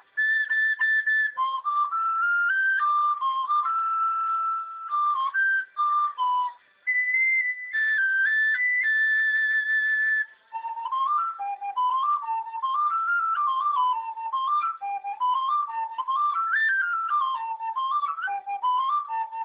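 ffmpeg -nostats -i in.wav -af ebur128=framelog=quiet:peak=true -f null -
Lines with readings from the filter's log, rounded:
Integrated loudness:
  I:         -23.9 LUFS
  Threshold: -34.0 LUFS
Loudness range:
  LRA:         3.8 LU
  Threshold: -44.0 LUFS
  LRA low:   -25.7 LUFS
  LRA high:  -21.8 LUFS
True peak:
  Peak:      -15.6 dBFS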